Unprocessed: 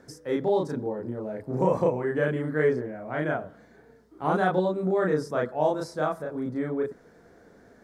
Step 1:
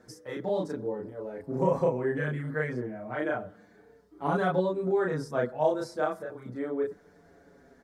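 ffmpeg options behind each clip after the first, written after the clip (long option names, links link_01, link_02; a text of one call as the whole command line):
ffmpeg -i in.wav -filter_complex "[0:a]asplit=2[link_01][link_02];[link_02]adelay=6.1,afreqshift=-0.33[link_03];[link_01][link_03]amix=inputs=2:normalize=1" out.wav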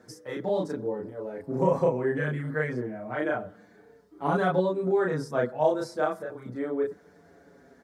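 ffmpeg -i in.wav -af "highpass=78,volume=2dB" out.wav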